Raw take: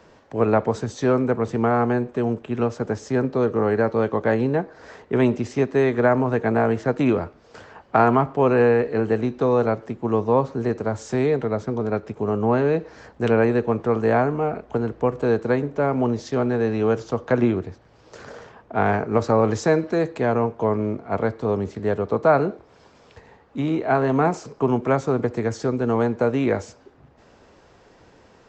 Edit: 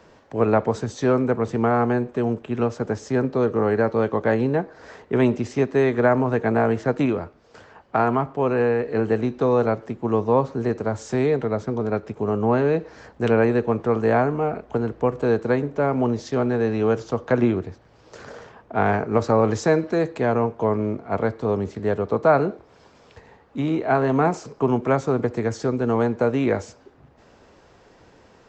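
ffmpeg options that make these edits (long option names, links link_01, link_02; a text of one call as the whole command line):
ffmpeg -i in.wav -filter_complex "[0:a]asplit=3[link_01][link_02][link_03];[link_01]atrim=end=7.062[link_04];[link_02]atrim=start=7.058:end=8.882,asetpts=PTS-STARTPTS,volume=-3.5dB[link_05];[link_03]atrim=start=8.878[link_06];[link_04][link_05]acrossfade=duration=0.004:curve1=hsin:curve2=hsin[link_07];[link_07][link_06]acrossfade=duration=0.004:curve1=hsin:curve2=hsin" out.wav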